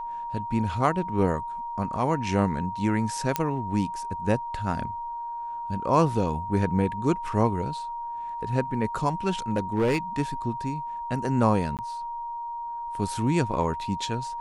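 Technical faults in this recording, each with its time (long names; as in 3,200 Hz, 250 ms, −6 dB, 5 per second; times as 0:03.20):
whistle 940 Hz −31 dBFS
0:03.36: click −8 dBFS
0:09.49–0:09.98: clipping −18.5 dBFS
0:11.77–0:11.79: drop-out 18 ms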